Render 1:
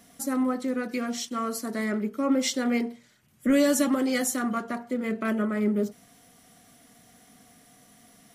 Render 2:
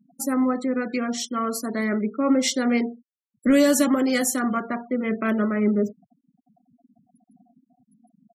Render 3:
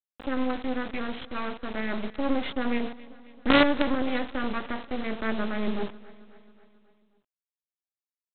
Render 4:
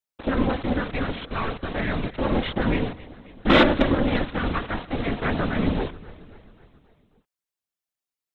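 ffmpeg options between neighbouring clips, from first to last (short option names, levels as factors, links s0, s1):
-af "afftfilt=real='re*gte(hypot(re,im),0.00891)':imag='im*gte(hypot(re,im),0.00891)':win_size=1024:overlap=0.75,volume=1.58"
-af "aresample=8000,acrusher=bits=3:dc=4:mix=0:aa=0.000001,aresample=44100,aecho=1:1:269|538|807|1076|1345:0.1|0.059|0.0348|0.0205|0.0121,volume=0.75"
-filter_complex "[0:a]asplit=2[s0][s1];[s1]asoftclip=type=tanh:threshold=0.168,volume=0.355[s2];[s0][s2]amix=inputs=2:normalize=0,afftfilt=real='hypot(re,im)*cos(2*PI*random(0))':imag='hypot(re,im)*sin(2*PI*random(1))':win_size=512:overlap=0.75,volume=2.51"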